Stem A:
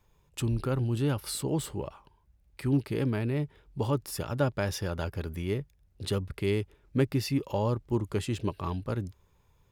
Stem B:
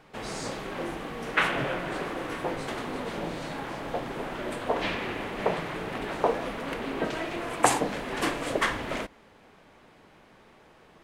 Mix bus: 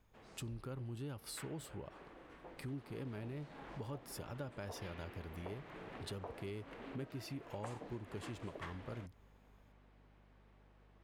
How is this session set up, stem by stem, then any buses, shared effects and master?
−7.5 dB, 0.00 s, no send, no processing
0:02.55 −23.5 dB → 0:02.87 −15 dB, 0.00 s, no send, low-pass filter 3,900 Hz 6 dB per octave; mains hum 50 Hz, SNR 19 dB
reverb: not used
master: downward compressor 3 to 1, threshold −45 dBFS, peak gain reduction 13 dB

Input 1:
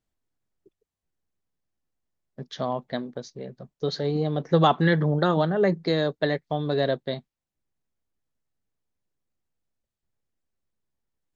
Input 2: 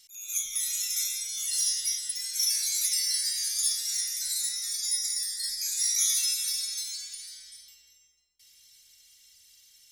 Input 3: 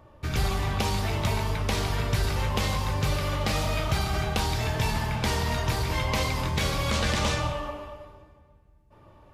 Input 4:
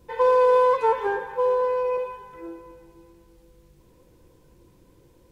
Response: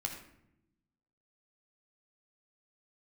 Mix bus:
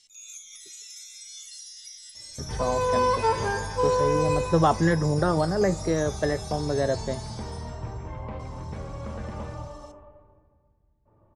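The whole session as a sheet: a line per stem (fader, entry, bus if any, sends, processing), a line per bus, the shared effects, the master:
+2.0 dB, 0.00 s, no send, low-pass filter 2,000 Hz
+2.0 dB, 0.00 s, no send, high-pass filter 230 Hz 24 dB per octave; downward compressor 12 to 1, threshold −37 dBFS, peak gain reduction 16 dB
−4.5 dB, 2.15 s, no send, low-pass filter 1,000 Hz 12 dB per octave
−6.5 dB, 2.40 s, no send, automatic gain control gain up to 13 dB; spectral tilt +3 dB per octave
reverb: not used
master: low-pass filter 8,400 Hz 24 dB per octave; tuned comb filter 110 Hz, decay 0.23 s, harmonics all, mix 40%

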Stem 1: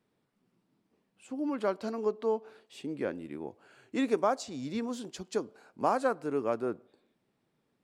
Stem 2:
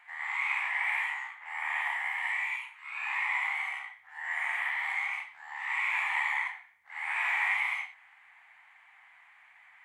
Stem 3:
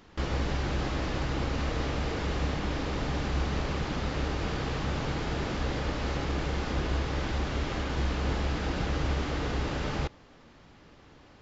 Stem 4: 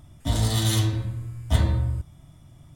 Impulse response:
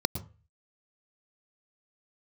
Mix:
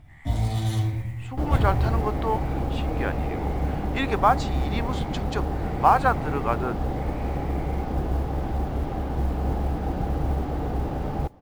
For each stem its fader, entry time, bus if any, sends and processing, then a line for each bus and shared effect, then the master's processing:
−1.0 dB, 0.00 s, no send, flat-topped bell 1,900 Hz +11.5 dB 2.5 octaves
−18.0 dB, 0.00 s, no send, spectral tilt +4.5 dB per octave; downward compressor, threshold −31 dBFS, peak gain reduction 10.5 dB
−5.0 dB, 1.20 s, no send, tilt shelving filter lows +9.5 dB, about 1,200 Hz
−8.0 dB, 0.00 s, no send, spectral tilt −2 dB per octave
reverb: not used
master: parametric band 770 Hz +10.5 dB 0.34 octaves; noise that follows the level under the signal 34 dB

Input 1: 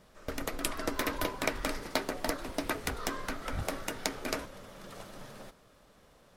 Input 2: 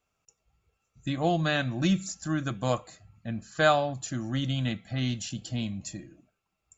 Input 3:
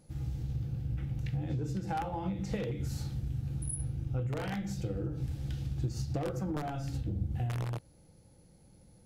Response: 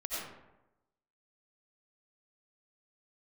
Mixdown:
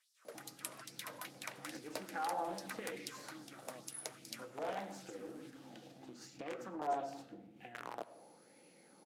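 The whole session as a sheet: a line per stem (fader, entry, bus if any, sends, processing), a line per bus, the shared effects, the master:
−17.5 dB, 0.00 s, send −22 dB, parametric band 10,000 Hz +11 dB 1.4 octaves; auto-filter high-pass sine 2.4 Hz 470–5,200 Hz
−18.5 dB, 1.05 s, no send, parametric band 2,900 Hz −15 dB 1.8 octaves; downward compressor, threshold −30 dBFS, peak gain reduction 10 dB
+1.5 dB, 0.25 s, send −17 dB, downward compressor 6 to 1, threshold −43 dBFS, peak gain reduction 14.5 dB; auto-filter bell 0.89 Hz 620–2,500 Hz +13 dB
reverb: on, RT60 0.95 s, pre-delay 50 ms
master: high-pass filter 250 Hz 24 dB per octave; highs frequency-modulated by the lows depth 0.24 ms

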